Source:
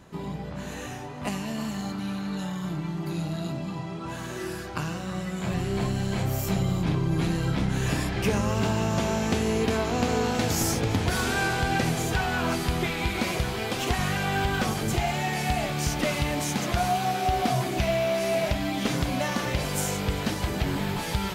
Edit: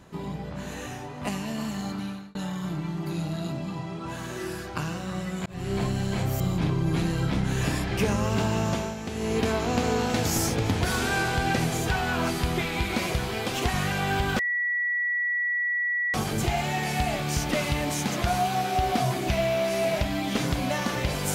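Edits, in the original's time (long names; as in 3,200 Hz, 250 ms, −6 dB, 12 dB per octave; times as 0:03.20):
0:02.00–0:02.35: fade out
0:05.46–0:05.72: fade in
0:06.40–0:06.65: remove
0:08.92–0:09.64: duck −9 dB, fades 0.29 s
0:14.64: insert tone 1,940 Hz −23.5 dBFS 1.75 s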